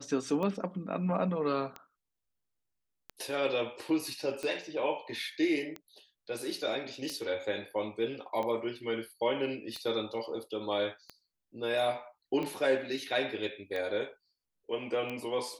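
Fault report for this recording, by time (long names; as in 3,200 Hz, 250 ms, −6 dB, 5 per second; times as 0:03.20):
scratch tick 45 rpm −24 dBFS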